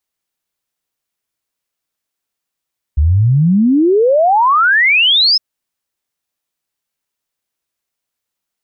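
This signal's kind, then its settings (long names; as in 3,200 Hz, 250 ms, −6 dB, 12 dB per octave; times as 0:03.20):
exponential sine sweep 69 Hz → 5,300 Hz 2.41 s −7.5 dBFS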